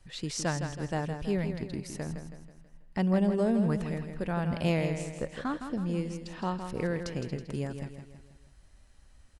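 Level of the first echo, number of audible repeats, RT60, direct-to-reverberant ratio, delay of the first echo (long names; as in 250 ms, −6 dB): −8.0 dB, 5, no reverb audible, no reverb audible, 162 ms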